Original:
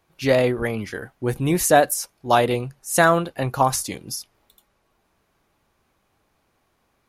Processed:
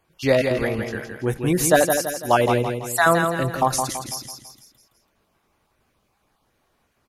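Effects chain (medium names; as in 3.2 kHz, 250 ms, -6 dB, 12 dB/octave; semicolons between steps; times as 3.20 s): random holes in the spectrogram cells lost 22%; feedback delay 166 ms, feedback 44%, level -6 dB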